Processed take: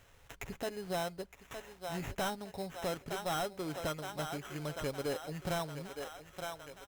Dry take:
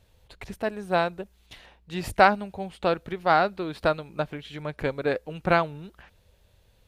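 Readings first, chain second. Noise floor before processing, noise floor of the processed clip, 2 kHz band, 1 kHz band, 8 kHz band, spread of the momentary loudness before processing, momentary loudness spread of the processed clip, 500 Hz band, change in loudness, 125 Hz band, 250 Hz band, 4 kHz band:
-62 dBFS, -62 dBFS, -14.5 dB, -15.0 dB, n/a, 16 LU, 10 LU, -12.0 dB, -13.0 dB, -7.5 dB, -9.5 dB, -5.5 dB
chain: comb 7.2 ms, depth 34%; thinning echo 0.913 s, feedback 54%, high-pass 350 Hz, level -13 dB; compressor 1.5:1, threshold -34 dBFS, peak gain reduction 8 dB; sample-rate reducer 4600 Hz, jitter 0%; soft clip -26.5 dBFS, distortion -9 dB; mismatched tape noise reduction encoder only; gain -3.5 dB

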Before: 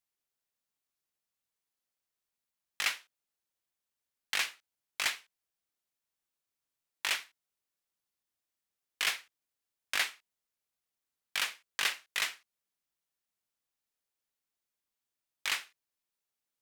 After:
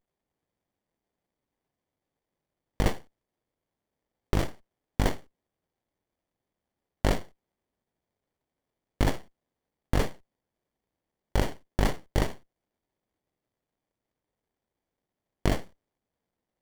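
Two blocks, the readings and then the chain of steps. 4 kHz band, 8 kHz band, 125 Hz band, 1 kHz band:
-7.0 dB, -5.0 dB, n/a, +7.5 dB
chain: running maximum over 33 samples; gain +8 dB

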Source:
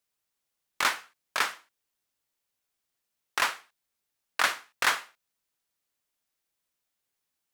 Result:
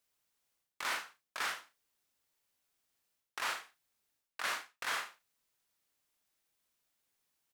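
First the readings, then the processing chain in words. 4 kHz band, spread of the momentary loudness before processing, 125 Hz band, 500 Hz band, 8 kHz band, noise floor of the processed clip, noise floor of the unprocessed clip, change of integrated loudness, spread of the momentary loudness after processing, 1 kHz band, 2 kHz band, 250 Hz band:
-9.0 dB, 10 LU, n/a, -9.0 dB, -9.0 dB, under -85 dBFS, -83 dBFS, -9.5 dB, 10 LU, -9.5 dB, -9.5 dB, -10.0 dB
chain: reverse; compressor 16:1, threshold -35 dBFS, peak gain reduction 17.5 dB; reverse; early reflections 37 ms -8 dB, 73 ms -17 dB; gain +1 dB

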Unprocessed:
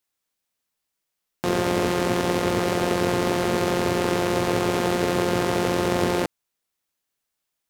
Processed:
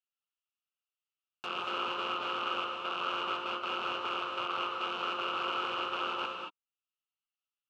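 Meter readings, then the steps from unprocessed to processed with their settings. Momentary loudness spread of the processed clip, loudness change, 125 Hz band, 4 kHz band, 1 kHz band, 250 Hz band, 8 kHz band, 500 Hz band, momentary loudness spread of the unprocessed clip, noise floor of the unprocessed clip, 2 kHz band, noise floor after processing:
4 LU, -11.0 dB, -32.0 dB, -4.5 dB, -6.5 dB, -22.5 dB, under -25 dB, -18.5 dB, 2 LU, -81 dBFS, -8.5 dB, under -85 dBFS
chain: treble ducked by the level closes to 2000 Hz, closed at -23.5 dBFS; gate with hold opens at -11 dBFS; in parallel at -0.5 dB: limiter -14.5 dBFS, peak gain reduction 6.5 dB; on the sum: wavefolder -13.5 dBFS; double band-pass 1900 Hz, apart 1.1 oct; non-linear reverb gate 0.25 s rising, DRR 2 dB; mismatched tape noise reduction encoder only

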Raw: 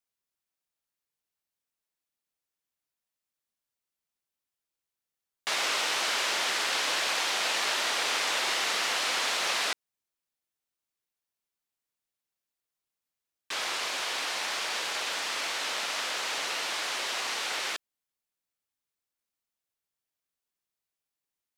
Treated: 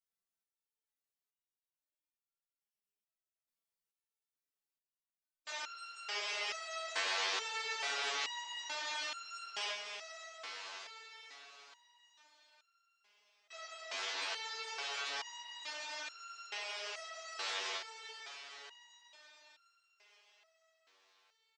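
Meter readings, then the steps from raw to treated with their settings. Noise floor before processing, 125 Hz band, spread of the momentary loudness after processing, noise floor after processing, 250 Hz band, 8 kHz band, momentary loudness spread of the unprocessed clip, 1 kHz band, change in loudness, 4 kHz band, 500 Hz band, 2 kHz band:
under -85 dBFS, n/a, 18 LU, under -85 dBFS, -17.5 dB, -13.5 dB, 5 LU, -10.5 dB, -11.5 dB, -11.0 dB, -10.0 dB, -10.5 dB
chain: spectral gate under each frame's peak -15 dB strong; comb 4.5 ms, depth 41%; on a send: diffused feedback echo 0.588 s, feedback 55%, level -7 dB; on the sum: stepped resonator 2.3 Hz 96–1400 Hz; gain +1.5 dB

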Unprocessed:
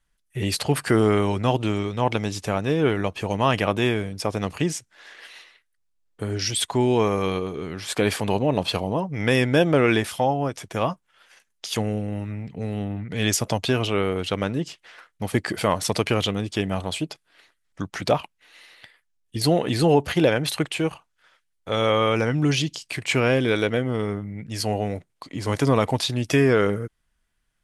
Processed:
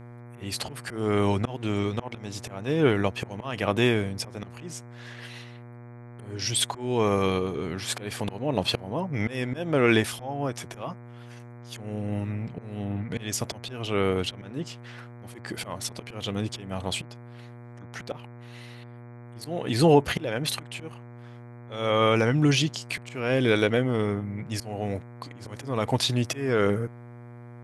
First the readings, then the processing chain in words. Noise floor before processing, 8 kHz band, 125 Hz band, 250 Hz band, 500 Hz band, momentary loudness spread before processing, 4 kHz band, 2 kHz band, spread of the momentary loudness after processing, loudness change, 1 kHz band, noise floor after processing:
-72 dBFS, -3.5 dB, -4.0 dB, -4.0 dB, -4.5 dB, 12 LU, -3.0 dB, -4.0 dB, 22 LU, -3.5 dB, -5.0 dB, -44 dBFS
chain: auto swell 0.379 s; buzz 120 Hz, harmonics 20, -44 dBFS -7 dB/oct

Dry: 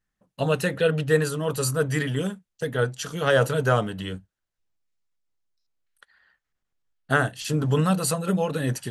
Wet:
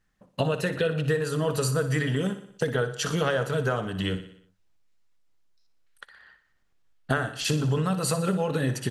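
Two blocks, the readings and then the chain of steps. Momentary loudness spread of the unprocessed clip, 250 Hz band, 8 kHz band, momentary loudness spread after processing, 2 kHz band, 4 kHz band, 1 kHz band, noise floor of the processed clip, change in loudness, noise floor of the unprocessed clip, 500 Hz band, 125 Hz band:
9 LU, -1.5 dB, -2.0 dB, 5 LU, -3.5 dB, 0.0 dB, -3.5 dB, -68 dBFS, -2.5 dB, -84 dBFS, -3.0 dB, -1.5 dB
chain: high shelf 9200 Hz -9 dB; compressor 10:1, threshold -31 dBFS, peak gain reduction 17 dB; on a send: feedback echo 60 ms, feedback 55%, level -12 dB; on the sum: gain +8.5 dB

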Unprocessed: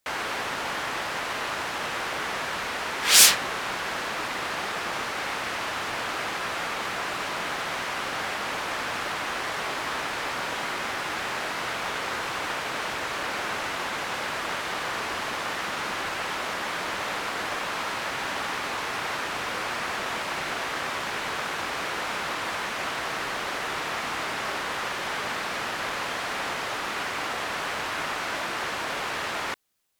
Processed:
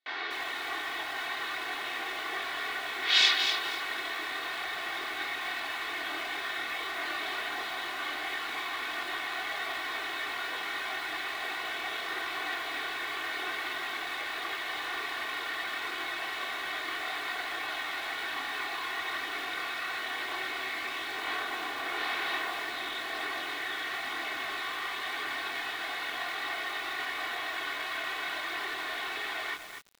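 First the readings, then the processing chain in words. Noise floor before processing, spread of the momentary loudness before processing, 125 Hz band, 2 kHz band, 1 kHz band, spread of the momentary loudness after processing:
-32 dBFS, 0 LU, under -15 dB, -3.0 dB, -6.5 dB, 2 LU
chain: speaker cabinet 270–4500 Hz, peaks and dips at 460 Hz -4 dB, 2000 Hz +7 dB, 3700 Hz +8 dB; comb 2.7 ms, depth 79%; chorus voices 4, 0.51 Hz, delay 25 ms, depth 1.7 ms; lo-fi delay 0.245 s, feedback 35%, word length 6-bit, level -6 dB; gain -6.5 dB

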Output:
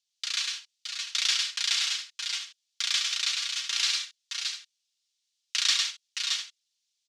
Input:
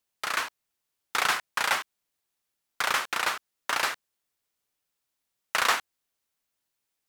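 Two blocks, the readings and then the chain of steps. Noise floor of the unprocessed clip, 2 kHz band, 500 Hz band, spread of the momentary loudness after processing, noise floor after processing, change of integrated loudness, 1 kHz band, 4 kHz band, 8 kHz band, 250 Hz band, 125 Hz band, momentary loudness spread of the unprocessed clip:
-83 dBFS, -5.0 dB, under -25 dB, 10 LU, -81 dBFS, +0.5 dB, -16.5 dB, +8.5 dB, +6.0 dB, under -40 dB, under -40 dB, 8 LU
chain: Butterworth band-pass 4700 Hz, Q 1.3; comb 4.3 ms, depth 36%; on a send: tapped delay 0.104/0.11/0.165/0.618/0.625/0.7 s -3.5/-8.5/-11.5/-6.5/-7.5/-14 dB; on the sum: gain +6 dB

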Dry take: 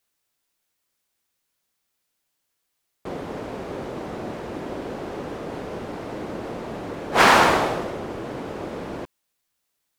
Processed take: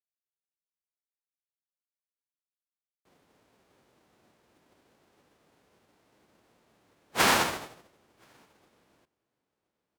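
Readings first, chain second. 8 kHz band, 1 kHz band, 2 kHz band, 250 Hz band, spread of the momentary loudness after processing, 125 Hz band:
-1.5 dB, -11.5 dB, -9.0 dB, -13.5 dB, 15 LU, -13.5 dB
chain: spectral whitening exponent 0.6; HPF 40 Hz; echo 1.023 s -17 dB; upward expander 2.5:1, over -31 dBFS; gain -7.5 dB

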